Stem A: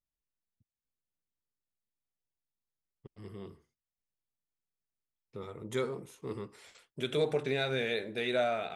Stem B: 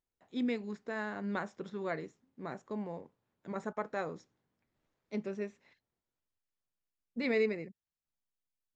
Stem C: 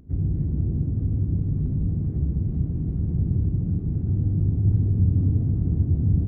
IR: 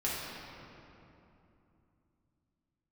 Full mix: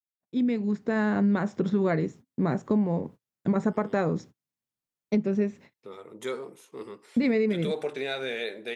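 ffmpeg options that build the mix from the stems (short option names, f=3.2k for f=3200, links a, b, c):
-filter_complex "[0:a]highpass=270,adelay=500,volume=1dB[a];[1:a]agate=range=-40dB:threshold=-60dB:ratio=16:detection=peak,equalizer=f=150:w=0.47:g=12,dynaudnorm=f=140:g=13:m=12.5dB,volume=1dB,alimiter=limit=-9dB:level=0:latency=1:release=435,volume=0dB[b];[a][b]amix=inputs=2:normalize=0,acompressor=threshold=-23dB:ratio=3"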